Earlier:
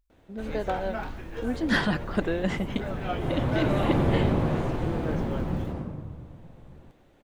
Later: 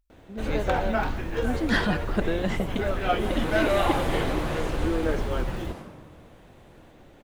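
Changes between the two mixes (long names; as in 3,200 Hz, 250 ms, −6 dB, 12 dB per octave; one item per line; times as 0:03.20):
first sound +8.0 dB
second sound: add spectral tilt +4 dB per octave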